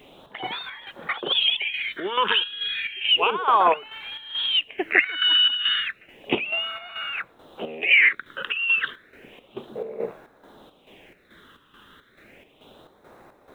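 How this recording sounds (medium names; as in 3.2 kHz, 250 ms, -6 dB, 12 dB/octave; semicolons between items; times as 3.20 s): phasing stages 8, 0.32 Hz, lowest notch 660–3000 Hz; a quantiser's noise floor 12-bit, dither none; chopped level 2.3 Hz, depth 60%, duty 60%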